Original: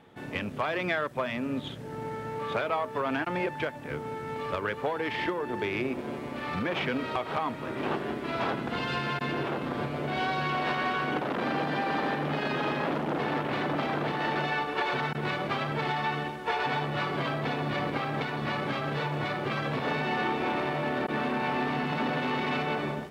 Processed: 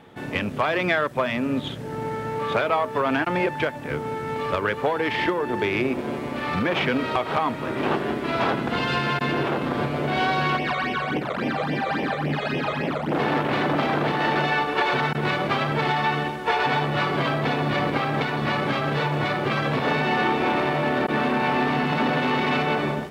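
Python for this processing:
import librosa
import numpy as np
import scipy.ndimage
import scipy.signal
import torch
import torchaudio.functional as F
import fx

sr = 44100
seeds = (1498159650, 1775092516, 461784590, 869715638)

y = fx.phaser_stages(x, sr, stages=12, low_hz=270.0, high_hz=1400.0, hz=3.6, feedback_pct=25, at=(10.56, 13.11), fade=0.02)
y = y * librosa.db_to_amplitude(7.0)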